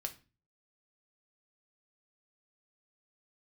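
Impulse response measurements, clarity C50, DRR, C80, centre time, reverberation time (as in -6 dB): 15.5 dB, 4.5 dB, 21.5 dB, 7 ms, 0.35 s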